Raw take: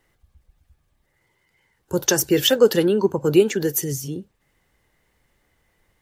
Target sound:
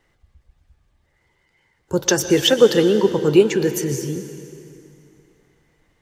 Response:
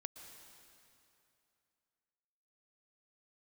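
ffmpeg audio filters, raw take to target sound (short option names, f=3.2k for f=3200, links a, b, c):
-filter_complex "[0:a]asplit=2[a][b];[1:a]atrim=start_sample=2205,lowpass=8.3k[c];[b][c]afir=irnorm=-1:irlink=0,volume=9.5dB[d];[a][d]amix=inputs=2:normalize=0,volume=-6.5dB"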